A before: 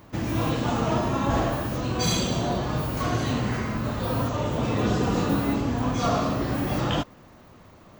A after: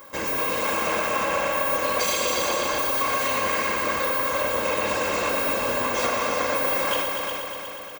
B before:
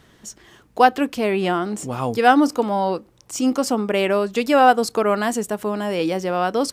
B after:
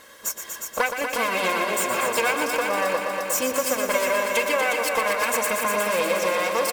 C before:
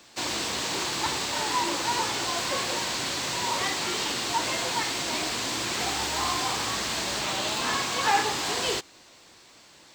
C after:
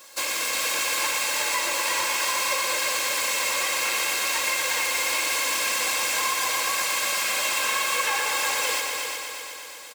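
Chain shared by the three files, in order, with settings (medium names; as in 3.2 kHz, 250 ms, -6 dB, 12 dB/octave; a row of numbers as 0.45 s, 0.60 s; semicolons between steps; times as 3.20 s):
comb filter that takes the minimum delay 3.7 ms; high-pass 1.5 kHz 6 dB/octave; peaking EQ 3.6 kHz -9.5 dB 2.3 oct; comb 1.9 ms, depth 55%; dynamic bell 2.4 kHz, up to +8 dB, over -55 dBFS, Q 2.6; compression 6:1, threshold -38 dBFS; multi-head delay 120 ms, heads all three, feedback 62%, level -9 dB; normalise loudness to -23 LUFS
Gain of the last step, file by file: +14.5 dB, +16.0 dB, +13.5 dB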